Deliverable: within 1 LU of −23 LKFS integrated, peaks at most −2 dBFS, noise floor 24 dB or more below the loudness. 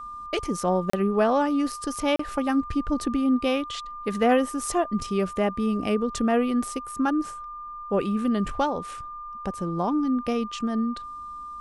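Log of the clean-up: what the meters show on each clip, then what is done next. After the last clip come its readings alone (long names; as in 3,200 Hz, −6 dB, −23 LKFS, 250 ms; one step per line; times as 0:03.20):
number of dropouts 2; longest dropout 34 ms; interfering tone 1,200 Hz; level of the tone −35 dBFS; integrated loudness −26.0 LKFS; sample peak −9.0 dBFS; target loudness −23.0 LKFS
→ repair the gap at 0:00.90/0:02.16, 34 ms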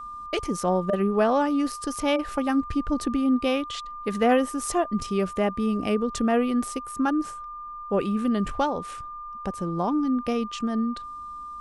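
number of dropouts 0; interfering tone 1,200 Hz; level of the tone −35 dBFS
→ notch filter 1,200 Hz, Q 30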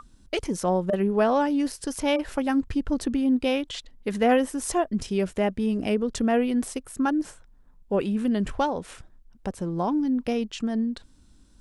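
interfering tone none found; integrated loudness −26.0 LKFS; sample peak −9.0 dBFS; target loudness −23.0 LKFS
→ level +3 dB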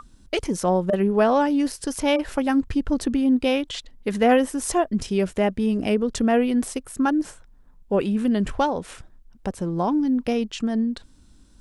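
integrated loudness −23.0 LKFS; sample peak −6.0 dBFS; background noise floor −52 dBFS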